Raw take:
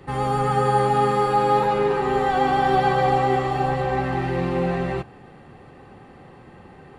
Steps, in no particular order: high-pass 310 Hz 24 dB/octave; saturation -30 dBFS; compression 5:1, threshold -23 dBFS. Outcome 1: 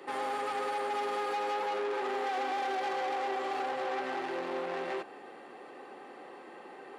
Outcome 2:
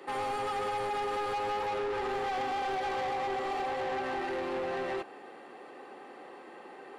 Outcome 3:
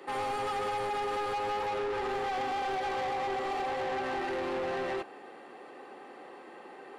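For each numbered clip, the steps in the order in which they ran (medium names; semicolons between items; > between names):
compression > saturation > high-pass; compression > high-pass > saturation; high-pass > compression > saturation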